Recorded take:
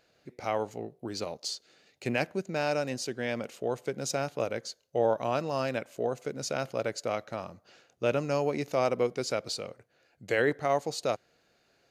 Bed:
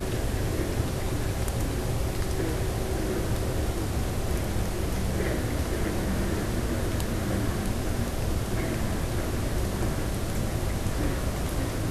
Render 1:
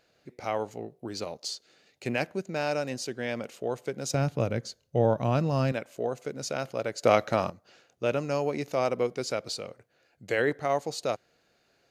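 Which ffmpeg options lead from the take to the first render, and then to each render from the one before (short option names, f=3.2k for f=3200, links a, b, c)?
-filter_complex "[0:a]asettb=1/sr,asplit=3[a][b][c];[a]atrim=end=4.144[d];[b]atrim=start=4.14:end=5.72,asetpts=PTS-STARTPTS,afade=t=in:d=0.004:c=qsin,afade=t=out:st=1.576:d=0.004:c=qsin,bass=f=250:g=15,treble=f=4k:g=-1[e];[c]atrim=start=5.716[f];[d][e]acrossfade=d=0.004:c1=hsin:c2=qsin[g];[g][f]acrossfade=d=0.004:c1=qsin:c2=hsin,asplit=3[h][i][j];[h]atrim=end=7.032[k];[i]atrim=start=7.028:end=7.502,asetpts=PTS-STARTPTS,volume=10.5dB[l];[j]atrim=start=7.498[m];[k][l]acrossfade=d=0.004:c1=hsin:c2=hsin[n];[n][m]acrossfade=d=0.004:c1=hsin:c2=hsin"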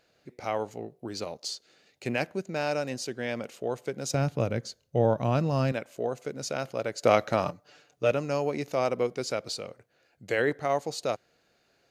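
-filter_complex "[0:a]asettb=1/sr,asplit=3[a][b][c];[a]atrim=end=7.454[d];[b]atrim=start=7.45:end=8.11,asetpts=PTS-STARTPTS,afade=t=in:d=0.004:c=qsin,afade=t=out:st=0.656:d=0.004:c=qsin,aecho=1:1:6.8:0.69,atrim=end_sample=29106[e];[c]atrim=start=8.106[f];[d][e]acrossfade=d=0.004:c1=hsin:c2=qsin[g];[g][f]acrossfade=d=0.004:c1=qsin:c2=hsin"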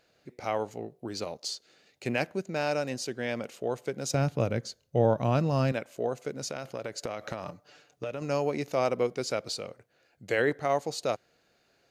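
-filter_complex "[0:a]asettb=1/sr,asplit=3[a][b][c];[a]atrim=end=6.374[d];[b]atrim=start=6.37:end=8.22,asetpts=PTS-STARTPTS,afade=t=in:d=0.004:c=qsin,afade=t=out:st=1.846:d=0.004:c=qsin,acompressor=threshold=-30dB:ratio=16:attack=3.2:release=140:knee=1:detection=peak[e];[c]atrim=start=8.216[f];[d][e]acrossfade=d=0.004:c1=hsin:c2=qsin[g];[g][f]acrossfade=d=0.004:c1=qsin:c2=hsin"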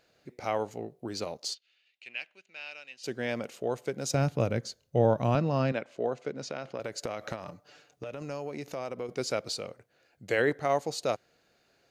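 -filter_complex "[0:a]asplit=3[a][b][c];[a]afade=t=out:st=1.53:d=0.02[d];[b]bandpass=f=2.8k:t=q:w=3.6,afade=t=in:st=1.53:d=0.02,afade=t=out:st=3.03:d=0.02[e];[c]afade=t=in:st=3.03:d=0.02[f];[d][e][f]amix=inputs=3:normalize=0,asettb=1/sr,asplit=3[g][h][i];[g]atrim=end=5.354[j];[h]atrim=start=5.35:end=6.8,asetpts=PTS-STARTPTS,afade=t=in:d=0.004:c=qsin,afade=t=out:st=1.446:d=0.004:c=qsin,highpass=130,lowpass=4.4k[k];[i]atrim=start=6.796[l];[j][k]acrossfade=d=0.004:c1=hsin:c2=qsin[m];[m][l]acrossfade=d=0.004:c1=qsin:c2=hsin,asettb=1/sr,asplit=3[n][o][p];[n]atrim=end=7.354[q];[o]atrim=start=7.35:end=9.09,asetpts=PTS-STARTPTS,afade=t=in:d=0.004:c=qsin,afade=t=out:st=1.736:d=0.004:c=qsin,acompressor=threshold=-36dB:ratio=2.5:attack=3.2:release=140:knee=1:detection=peak[r];[p]atrim=start=9.086[s];[q][r]acrossfade=d=0.004:c1=hsin:c2=qsin[t];[t][s]acrossfade=d=0.004:c1=qsin:c2=hsin"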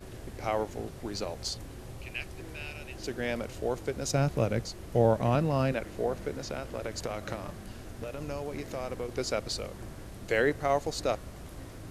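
-filter_complex "[1:a]volume=-15.5dB[a];[0:a][a]amix=inputs=2:normalize=0"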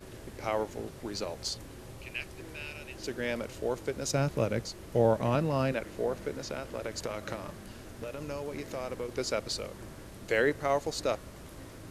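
-af "lowshelf=f=120:g=-6.5,bandreject=f=730:w=12"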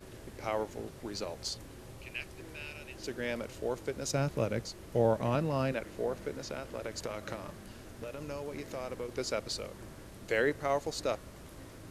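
-af "volume=-2.5dB"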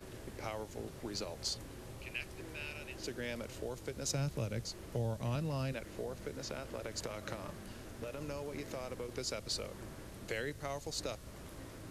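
-filter_complex "[0:a]acrossover=split=160|3000[a][b][c];[b]acompressor=threshold=-39dB:ratio=6[d];[a][d][c]amix=inputs=3:normalize=0"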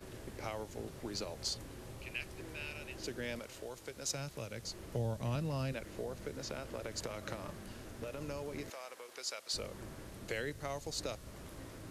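-filter_complex "[0:a]asettb=1/sr,asplit=3[a][b][c];[a]atrim=end=3.394[d];[b]atrim=start=3.39:end=4.63,asetpts=PTS-STARTPTS,afade=t=in:d=0.004:c=qsin,afade=t=out:st=1.236:d=0.004:c=qsin,lowshelf=f=390:g=-10[e];[c]atrim=start=4.626[f];[d][e]acrossfade=d=0.004:c1=hsin:c2=qsin[g];[g][f]acrossfade=d=0.004:c1=qsin:c2=hsin,asettb=1/sr,asplit=3[h][i][j];[h]atrim=end=8.704[k];[i]atrim=start=8.7:end=9.54,asetpts=PTS-STARTPTS,afade=t=in:d=0.004:c=qsin,afade=t=out:st=0.836:d=0.004:c=qsin,highpass=760[l];[j]atrim=start=9.536[m];[k][l]acrossfade=d=0.004:c1=hsin:c2=qsin[n];[n][m]acrossfade=d=0.004:c1=qsin:c2=hsin"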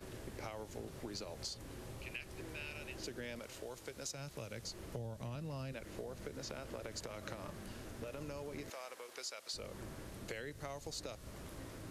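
-af "acompressor=threshold=-41dB:ratio=6"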